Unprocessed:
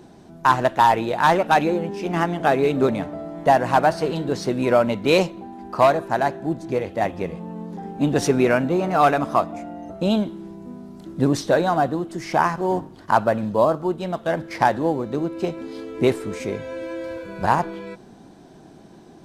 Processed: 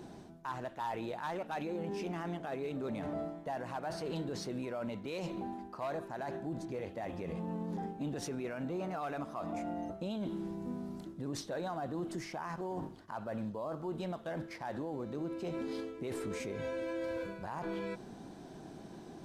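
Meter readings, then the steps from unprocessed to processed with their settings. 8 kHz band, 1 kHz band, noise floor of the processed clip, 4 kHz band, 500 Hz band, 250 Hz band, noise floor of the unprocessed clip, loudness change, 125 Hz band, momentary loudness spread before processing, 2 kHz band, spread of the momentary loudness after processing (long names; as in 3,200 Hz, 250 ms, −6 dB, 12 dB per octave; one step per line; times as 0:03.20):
−14.5 dB, −21.5 dB, −51 dBFS, −17.0 dB, −18.0 dB, −15.0 dB, −46 dBFS, −18.5 dB, −15.0 dB, 15 LU, −20.0 dB, 5 LU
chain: reversed playback
downward compressor 10 to 1, threshold −27 dBFS, peak gain reduction 16.5 dB
reversed playback
brickwall limiter −27.5 dBFS, peak gain reduction 11 dB
level −3 dB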